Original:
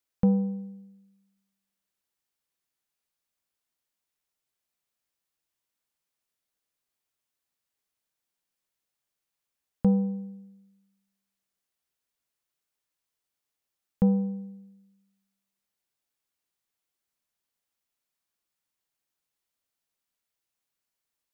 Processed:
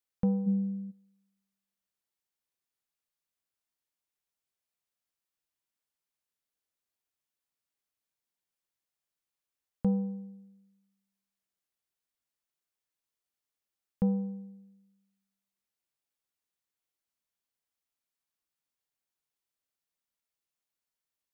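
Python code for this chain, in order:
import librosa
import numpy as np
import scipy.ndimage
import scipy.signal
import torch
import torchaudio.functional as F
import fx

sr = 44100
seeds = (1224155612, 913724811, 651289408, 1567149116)

y = fx.small_body(x, sr, hz=(210.0, 380.0), ring_ms=45, db=fx.line((0.46, 12.0), (0.9, 17.0)), at=(0.46, 0.9), fade=0.02)
y = y * 10.0 ** (-5.5 / 20.0)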